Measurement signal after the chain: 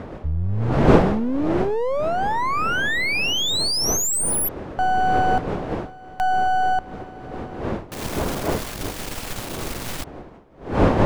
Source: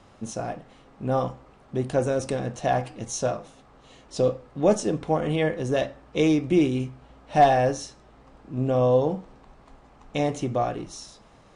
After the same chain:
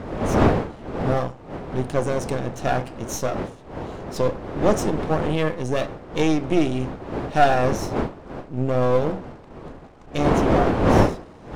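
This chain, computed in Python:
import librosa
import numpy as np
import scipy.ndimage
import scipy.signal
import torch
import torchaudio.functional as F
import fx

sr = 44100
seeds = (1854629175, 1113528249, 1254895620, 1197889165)

y = np.where(x < 0.0, 10.0 ** (-12.0 / 20.0) * x, x)
y = fx.dmg_wind(y, sr, seeds[0], corner_hz=530.0, level_db=-30.0)
y = y * 10.0 ** (4.0 / 20.0)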